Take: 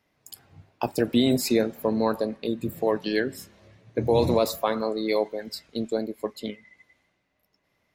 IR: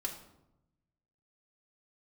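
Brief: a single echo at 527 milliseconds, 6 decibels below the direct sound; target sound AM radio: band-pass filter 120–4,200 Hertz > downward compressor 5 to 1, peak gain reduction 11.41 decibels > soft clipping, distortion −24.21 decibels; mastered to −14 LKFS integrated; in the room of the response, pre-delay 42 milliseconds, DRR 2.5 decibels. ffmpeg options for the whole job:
-filter_complex "[0:a]aecho=1:1:527:0.501,asplit=2[link_01][link_02];[1:a]atrim=start_sample=2205,adelay=42[link_03];[link_02][link_03]afir=irnorm=-1:irlink=0,volume=-3.5dB[link_04];[link_01][link_04]amix=inputs=2:normalize=0,highpass=120,lowpass=4200,acompressor=threshold=-26dB:ratio=5,asoftclip=threshold=-18dB,volume=17dB"

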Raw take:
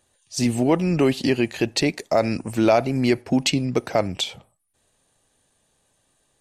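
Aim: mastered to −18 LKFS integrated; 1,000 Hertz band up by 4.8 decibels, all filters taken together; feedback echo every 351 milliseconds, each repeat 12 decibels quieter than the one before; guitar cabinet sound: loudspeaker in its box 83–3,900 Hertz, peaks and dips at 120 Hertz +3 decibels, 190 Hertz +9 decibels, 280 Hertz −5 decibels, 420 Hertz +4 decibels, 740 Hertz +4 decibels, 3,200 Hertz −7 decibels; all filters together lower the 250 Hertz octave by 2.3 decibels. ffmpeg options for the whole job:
ffmpeg -i in.wav -af "highpass=83,equalizer=frequency=120:width_type=q:width=4:gain=3,equalizer=frequency=190:width_type=q:width=4:gain=9,equalizer=frequency=280:width_type=q:width=4:gain=-5,equalizer=frequency=420:width_type=q:width=4:gain=4,equalizer=frequency=740:width_type=q:width=4:gain=4,equalizer=frequency=3200:width_type=q:width=4:gain=-7,lowpass=frequency=3900:width=0.5412,lowpass=frequency=3900:width=1.3066,equalizer=frequency=250:width_type=o:gain=-4.5,equalizer=frequency=1000:width_type=o:gain=4,aecho=1:1:351|702|1053:0.251|0.0628|0.0157,volume=3dB" out.wav

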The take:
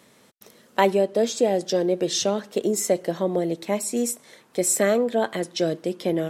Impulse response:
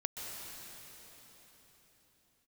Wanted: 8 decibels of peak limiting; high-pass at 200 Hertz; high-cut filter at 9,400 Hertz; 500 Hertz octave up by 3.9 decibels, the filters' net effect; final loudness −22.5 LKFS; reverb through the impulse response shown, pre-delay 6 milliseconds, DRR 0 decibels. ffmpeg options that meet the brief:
-filter_complex "[0:a]highpass=200,lowpass=9400,equalizer=frequency=500:width_type=o:gain=5,alimiter=limit=-12dB:level=0:latency=1,asplit=2[link_01][link_02];[1:a]atrim=start_sample=2205,adelay=6[link_03];[link_02][link_03]afir=irnorm=-1:irlink=0,volume=-1.5dB[link_04];[link_01][link_04]amix=inputs=2:normalize=0,volume=-2.5dB"

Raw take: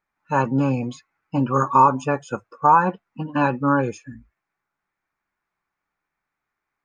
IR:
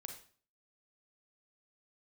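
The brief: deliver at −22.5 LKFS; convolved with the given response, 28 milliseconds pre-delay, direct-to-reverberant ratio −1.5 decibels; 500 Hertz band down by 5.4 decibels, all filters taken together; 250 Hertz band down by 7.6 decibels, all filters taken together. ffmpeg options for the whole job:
-filter_complex "[0:a]equalizer=frequency=250:width_type=o:gain=-8,equalizer=frequency=500:width_type=o:gain=-4.5,asplit=2[link_01][link_02];[1:a]atrim=start_sample=2205,adelay=28[link_03];[link_02][link_03]afir=irnorm=-1:irlink=0,volume=5.5dB[link_04];[link_01][link_04]amix=inputs=2:normalize=0,volume=-3.5dB"

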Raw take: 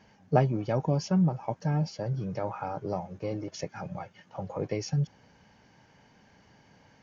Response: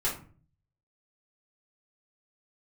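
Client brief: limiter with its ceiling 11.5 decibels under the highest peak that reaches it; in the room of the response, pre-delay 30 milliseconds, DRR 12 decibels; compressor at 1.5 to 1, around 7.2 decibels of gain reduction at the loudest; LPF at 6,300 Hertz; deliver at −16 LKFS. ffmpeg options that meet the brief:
-filter_complex "[0:a]lowpass=6300,acompressor=threshold=-37dB:ratio=1.5,alimiter=level_in=4dB:limit=-24dB:level=0:latency=1,volume=-4dB,asplit=2[link_01][link_02];[1:a]atrim=start_sample=2205,adelay=30[link_03];[link_02][link_03]afir=irnorm=-1:irlink=0,volume=-19.5dB[link_04];[link_01][link_04]amix=inputs=2:normalize=0,volume=22.5dB"

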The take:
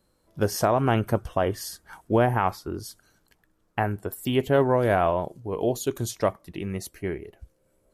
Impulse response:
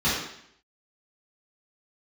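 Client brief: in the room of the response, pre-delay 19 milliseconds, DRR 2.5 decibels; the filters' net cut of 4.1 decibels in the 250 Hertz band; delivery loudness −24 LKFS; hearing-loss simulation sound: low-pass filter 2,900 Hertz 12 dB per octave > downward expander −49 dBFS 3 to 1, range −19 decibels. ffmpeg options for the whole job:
-filter_complex "[0:a]equalizer=frequency=250:width_type=o:gain=-5.5,asplit=2[link_01][link_02];[1:a]atrim=start_sample=2205,adelay=19[link_03];[link_02][link_03]afir=irnorm=-1:irlink=0,volume=-17.5dB[link_04];[link_01][link_04]amix=inputs=2:normalize=0,lowpass=2900,agate=range=-19dB:threshold=-49dB:ratio=3,volume=1dB"

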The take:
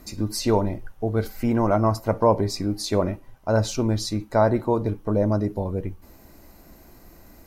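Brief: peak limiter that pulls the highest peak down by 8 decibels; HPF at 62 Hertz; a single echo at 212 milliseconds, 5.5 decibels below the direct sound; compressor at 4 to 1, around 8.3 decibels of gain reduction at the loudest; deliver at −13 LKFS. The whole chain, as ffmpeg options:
ffmpeg -i in.wav -af "highpass=62,acompressor=threshold=-23dB:ratio=4,alimiter=limit=-21dB:level=0:latency=1,aecho=1:1:212:0.531,volume=17.5dB" out.wav

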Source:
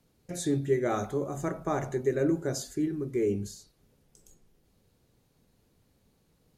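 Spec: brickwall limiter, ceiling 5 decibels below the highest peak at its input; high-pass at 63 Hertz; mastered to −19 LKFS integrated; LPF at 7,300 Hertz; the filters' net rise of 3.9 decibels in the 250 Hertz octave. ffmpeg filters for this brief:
ffmpeg -i in.wav -af "highpass=63,lowpass=7300,equalizer=frequency=250:width_type=o:gain=5.5,volume=11dB,alimiter=limit=-8dB:level=0:latency=1" out.wav

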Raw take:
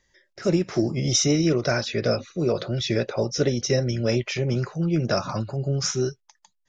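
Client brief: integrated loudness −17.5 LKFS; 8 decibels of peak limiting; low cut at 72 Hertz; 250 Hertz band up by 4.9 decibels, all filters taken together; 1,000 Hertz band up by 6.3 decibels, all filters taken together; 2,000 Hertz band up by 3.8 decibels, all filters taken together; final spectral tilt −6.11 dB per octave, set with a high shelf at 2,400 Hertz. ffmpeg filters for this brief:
ffmpeg -i in.wav -af "highpass=72,equalizer=frequency=250:width_type=o:gain=6.5,equalizer=frequency=1000:width_type=o:gain=8.5,equalizer=frequency=2000:width_type=o:gain=4.5,highshelf=frequency=2400:gain=-6,volume=6.5dB,alimiter=limit=-7dB:level=0:latency=1" out.wav

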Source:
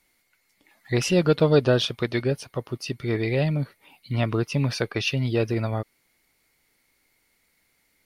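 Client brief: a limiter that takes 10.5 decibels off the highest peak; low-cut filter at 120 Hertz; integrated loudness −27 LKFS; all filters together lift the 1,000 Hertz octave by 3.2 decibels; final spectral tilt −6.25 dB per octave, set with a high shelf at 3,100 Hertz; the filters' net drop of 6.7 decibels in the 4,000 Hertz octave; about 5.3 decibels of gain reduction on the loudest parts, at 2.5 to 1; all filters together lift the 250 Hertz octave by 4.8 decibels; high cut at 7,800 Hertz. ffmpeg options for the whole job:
ffmpeg -i in.wav -af "highpass=120,lowpass=7800,equalizer=frequency=250:width_type=o:gain=7,equalizer=frequency=1000:width_type=o:gain=5,highshelf=frequency=3100:gain=-6.5,equalizer=frequency=4000:width_type=o:gain=-4,acompressor=threshold=-18dB:ratio=2.5,volume=2.5dB,alimiter=limit=-16dB:level=0:latency=1" out.wav

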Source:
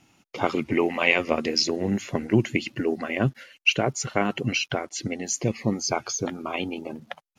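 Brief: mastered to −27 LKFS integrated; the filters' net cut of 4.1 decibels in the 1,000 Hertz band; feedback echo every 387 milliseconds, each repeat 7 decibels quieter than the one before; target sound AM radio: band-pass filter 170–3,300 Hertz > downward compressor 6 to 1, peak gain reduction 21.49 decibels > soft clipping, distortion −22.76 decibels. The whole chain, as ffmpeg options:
ffmpeg -i in.wav -af "highpass=170,lowpass=3300,equalizer=frequency=1000:width_type=o:gain=-6,aecho=1:1:387|774|1161|1548|1935:0.447|0.201|0.0905|0.0407|0.0183,acompressor=threshold=-39dB:ratio=6,asoftclip=threshold=-28dB,volume=16dB" out.wav

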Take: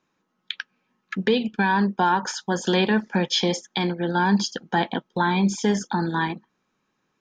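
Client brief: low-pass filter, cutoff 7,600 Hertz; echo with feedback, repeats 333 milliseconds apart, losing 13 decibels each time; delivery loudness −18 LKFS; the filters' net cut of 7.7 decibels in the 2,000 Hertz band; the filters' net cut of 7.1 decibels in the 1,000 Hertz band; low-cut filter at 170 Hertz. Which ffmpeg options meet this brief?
ffmpeg -i in.wav -af "highpass=170,lowpass=7600,equalizer=frequency=1000:width_type=o:gain=-7,equalizer=frequency=2000:width_type=o:gain=-7.5,aecho=1:1:333|666|999:0.224|0.0493|0.0108,volume=8dB" out.wav

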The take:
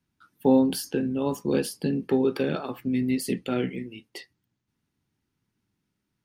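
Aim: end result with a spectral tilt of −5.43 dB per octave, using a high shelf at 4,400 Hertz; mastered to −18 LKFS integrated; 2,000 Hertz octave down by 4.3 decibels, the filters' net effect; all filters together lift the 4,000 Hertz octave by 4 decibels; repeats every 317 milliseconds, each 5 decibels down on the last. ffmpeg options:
ffmpeg -i in.wav -af "equalizer=frequency=2000:width_type=o:gain=-8.5,equalizer=frequency=4000:width_type=o:gain=5,highshelf=frequency=4400:gain=3.5,aecho=1:1:317|634|951|1268|1585|1902|2219:0.562|0.315|0.176|0.0988|0.0553|0.031|0.0173,volume=7dB" out.wav

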